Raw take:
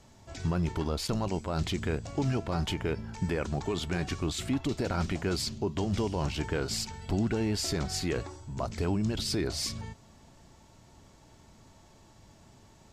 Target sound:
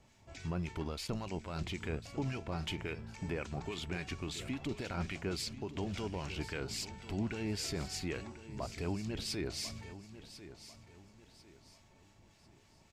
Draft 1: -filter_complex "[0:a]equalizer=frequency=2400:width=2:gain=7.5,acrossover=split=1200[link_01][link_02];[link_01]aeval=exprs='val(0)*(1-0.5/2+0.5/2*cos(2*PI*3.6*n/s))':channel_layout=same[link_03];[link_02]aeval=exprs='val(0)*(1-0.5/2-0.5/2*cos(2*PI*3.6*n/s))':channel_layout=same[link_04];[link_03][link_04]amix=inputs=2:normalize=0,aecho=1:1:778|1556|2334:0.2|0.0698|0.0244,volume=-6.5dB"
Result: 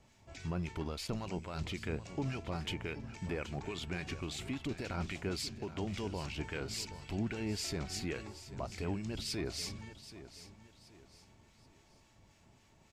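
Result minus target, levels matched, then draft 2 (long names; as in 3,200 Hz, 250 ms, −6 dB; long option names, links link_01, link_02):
echo 268 ms early
-filter_complex "[0:a]equalizer=frequency=2400:width=2:gain=7.5,acrossover=split=1200[link_01][link_02];[link_01]aeval=exprs='val(0)*(1-0.5/2+0.5/2*cos(2*PI*3.6*n/s))':channel_layout=same[link_03];[link_02]aeval=exprs='val(0)*(1-0.5/2-0.5/2*cos(2*PI*3.6*n/s))':channel_layout=same[link_04];[link_03][link_04]amix=inputs=2:normalize=0,aecho=1:1:1046|2092|3138:0.2|0.0698|0.0244,volume=-6.5dB"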